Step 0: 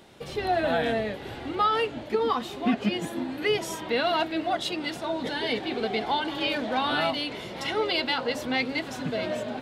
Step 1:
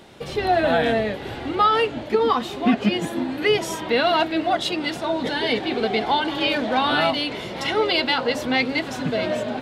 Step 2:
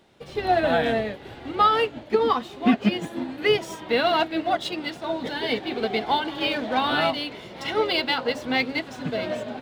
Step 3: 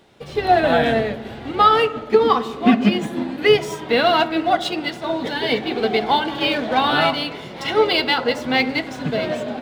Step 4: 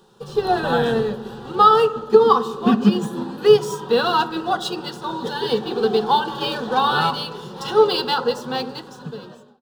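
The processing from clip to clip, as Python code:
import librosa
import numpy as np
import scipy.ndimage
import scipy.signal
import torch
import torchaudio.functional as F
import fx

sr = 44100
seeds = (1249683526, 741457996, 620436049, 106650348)

y1 = fx.high_shelf(x, sr, hz=8400.0, db=-4.0)
y1 = y1 * librosa.db_to_amplitude(6.0)
y2 = scipy.signal.medfilt(y1, 3)
y2 = fx.upward_expand(y2, sr, threshold_db=-38.0, expansion=1.5)
y3 = fx.rev_fdn(y2, sr, rt60_s=1.2, lf_ratio=1.55, hf_ratio=0.35, size_ms=41.0, drr_db=11.5)
y3 = y3 * librosa.db_to_amplitude(5.0)
y4 = fx.fade_out_tail(y3, sr, length_s=1.46)
y4 = fx.fixed_phaser(y4, sr, hz=430.0, stages=8)
y4 = y4 * librosa.db_to_amplitude(2.5)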